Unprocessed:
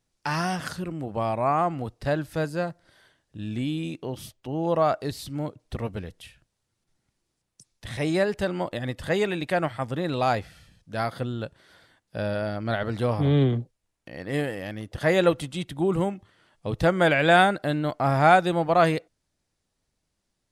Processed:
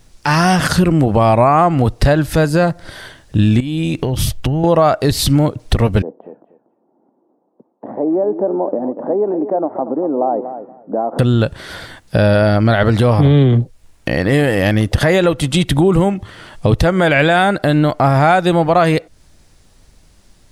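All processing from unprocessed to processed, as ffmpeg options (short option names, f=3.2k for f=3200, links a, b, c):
-filter_complex "[0:a]asettb=1/sr,asplit=3[a][b][c];[a]atrim=end=3.604[d];[b]atrim=start=3.6:end=4.64,asetpts=PTS-STARTPTS,afade=t=in:d=0.004:c=qsin,afade=t=out:st=1.036:d=0.004:c=qsin,asubboost=boost=9:cutoff=160,acompressor=threshold=-38dB:ratio=16:attack=3.2:release=140:knee=1:detection=peak[e];[c]atrim=start=4.636[f];[d][e]acrossfade=d=0.004:c1=hsin:c2=qsin[g];[g][f]acrossfade=d=0.004:c1=qsin:c2=hsin,asettb=1/sr,asplit=3[h][i][j];[h]atrim=end=6.024[k];[i]atrim=start=6.02:end=11.19,asetpts=PTS-STARTPTS,afade=t=in:d=0.004:c=qsin,afade=t=out:st=5.166:d=0.004:c=qsin,acompressor=threshold=-37dB:ratio=6:attack=3.2:release=140:knee=1:detection=peak,asuperpass=centerf=470:order=8:qfactor=0.7,aecho=1:1:239|478:0.266|0.0452,atrim=end_sample=227997[l];[j]atrim=start=11.186[m];[k][l]acrossfade=d=0.004:c1=hsin:c2=qsin[n];[n][m]acrossfade=d=0.004:c1=qsin:c2=hsin,lowshelf=f=63:g=12,acompressor=threshold=-33dB:ratio=6,alimiter=level_in=26.5dB:limit=-1dB:release=50:level=0:latency=1,volume=-2dB"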